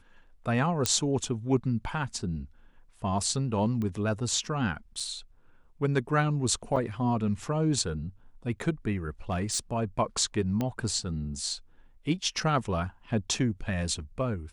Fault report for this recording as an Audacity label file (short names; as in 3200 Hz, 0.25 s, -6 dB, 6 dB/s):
0.860000	0.860000	pop -8 dBFS
3.820000	3.820000	pop -23 dBFS
5.000000	5.000000	gap 4.7 ms
6.760000	6.770000	gap 5.9 ms
9.300000	9.590000	clipped -24 dBFS
10.610000	10.610000	pop -17 dBFS